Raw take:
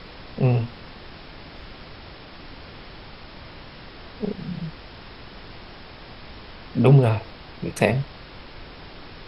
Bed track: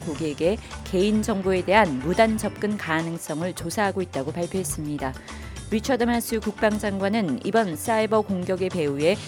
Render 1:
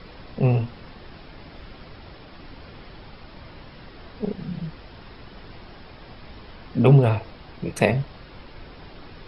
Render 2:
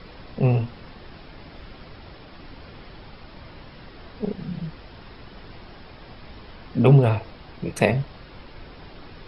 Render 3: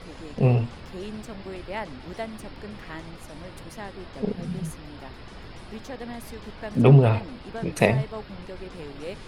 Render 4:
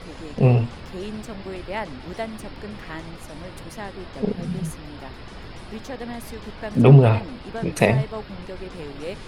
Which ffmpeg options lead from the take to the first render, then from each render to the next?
-af "afftdn=nr=6:nf=-43"
-af anull
-filter_complex "[1:a]volume=-15.5dB[a];[0:a][a]amix=inputs=2:normalize=0"
-af "volume=3.5dB,alimiter=limit=-1dB:level=0:latency=1"

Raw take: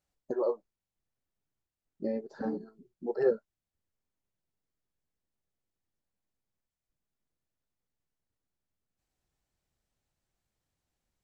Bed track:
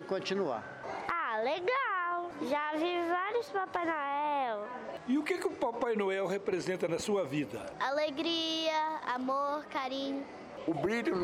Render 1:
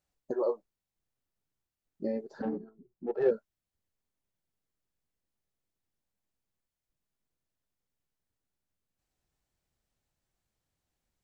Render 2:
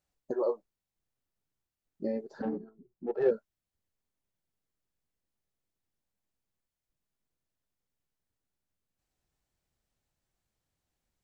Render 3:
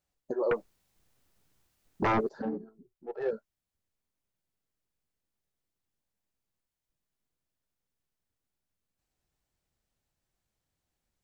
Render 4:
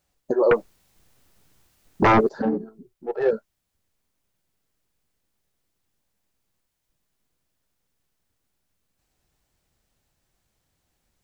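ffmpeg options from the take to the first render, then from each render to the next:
-filter_complex "[0:a]asettb=1/sr,asplit=3[a][b][c];[a]atrim=end=2.424[d];[b]atrim=start=2.42:end=3.31,asetpts=PTS-STARTPTS,afade=t=in:d=0.004:c=qsin,afade=t=out:st=0.886:d=0.004:c=qsin,adynamicsmooth=sensitivity=3.5:basefreq=1.4k[e];[c]atrim=start=3.306[f];[d][e]acrossfade=d=0.004:c1=hsin:c2=qsin[g];[g][f]acrossfade=d=0.004:c1=qsin:c2=hsin"
-af anull
-filter_complex "[0:a]asettb=1/sr,asplit=3[a][b][c];[a]atrim=end=0.514[d];[b]atrim=start=0.51:end=2.29,asetpts=PTS-STARTPTS,afade=t=in:d=0.004:c=qsin,afade=t=out:st=1.776:d=0.004:c=qsin,aeval=exprs='0.0794*sin(PI/2*3.98*val(0)/0.0794)':c=same[e];[c]atrim=start=2.286[f];[d][e]acrossfade=d=0.004:c1=hsin:c2=qsin[g];[g][f]acrossfade=d=0.004:c1=qsin:c2=hsin,asettb=1/sr,asplit=3[h][i][j];[h]atrim=end=2.894[k];[i]atrim=start=2.89:end=3.33,asetpts=PTS-STARTPTS,afade=t=in:d=0.004:c=qsin,afade=t=out:st=0.436:d=0.004:c=qsin,equalizer=f=220:t=o:w=1.5:g=-15[l];[j]atrim=start=3.326[m];[k][l]acrossfade=d=0.004:c1=hsin:c2=qsin[n];[n][m]acrossfade=d=0.004:c1=qsin:c2=hsin"
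-af "volume=10.5dB"

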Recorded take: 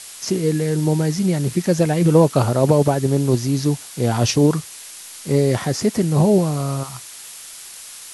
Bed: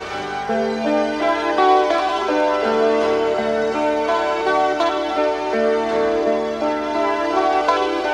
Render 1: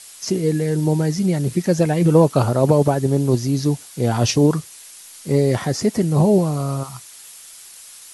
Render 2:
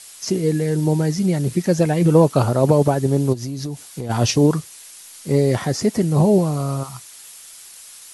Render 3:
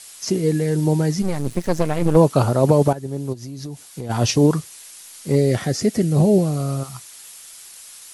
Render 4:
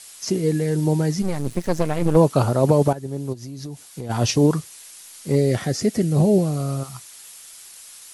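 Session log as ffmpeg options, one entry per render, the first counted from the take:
-af "afftdn=nr=6:nf=-38"
-filter_complex "[0:a]asplit=3[a][b][c];[a]afade=t=out:st=3.32:d=0.02[d];[b]acompressor=threshold=-23dB:ratio=10:attack=3.2:release=140:knee=1:detection=peak,afade=t=in:st=3.32:d=0.02,afade=t=out:st=4.09:d=0.02[e];[c]afade=t=in:st=4.09:d=0.02[f];[d][e][f]amix=inputs=3:normalize=0"
-filter_complex "[0:a]asplit=3[a][b][c];[a]afade=t=out:st=1.21:d=0.02[d];[b]aeval=exprs='max(val(0),0)':c=same,afade=t=in:st=1.21:d=0.02,afade=t=out:st=2.15:d=0.02[e];[c]afade=t=in:st=2.15:d=0.02[f];[d][e][f]amix=inputs=3:normalize=0,asettb=1/sr,asplit=3[g][h][i];[g]atrim=end=5.354[j];[h]atrim=start=5.35:end=6.95,asetpts=PTS-STARTPTS,afade=t=in:d=0.004:c=qsin,afade=t=out:st=1.596:d=0.004:c=qsin,equalizer=f=970:w=2.9:g=-10.5[k];[i]atrim=start=6.946[l];[j][k]acrossfade=d=0.004:c1=hsin:c2=qsin[m];[m][l]acrossfade=d=0.004:c1=qsin:c2=hsin,asplit=2[n][o];[n]atrim=end=2.93,asetpts=PTS-STARTPTS,afade=t=out:st=2.926:d=0.004:c=hsin:silence=0.237137[p];[o]atrim=start=2.93,asetpts=PTS-STARTPTS,afade=t=in:d=1.51:silence=0.237137[q];[p][q]concat=n=2:v=0:a=1"
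-af "volume=-1.5dB"

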